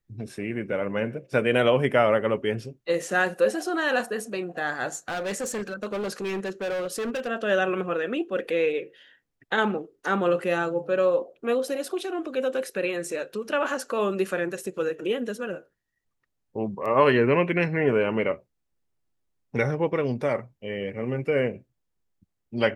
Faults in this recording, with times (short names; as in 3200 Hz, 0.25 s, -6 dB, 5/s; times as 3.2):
4.86–7.28 clipped -26 dBFS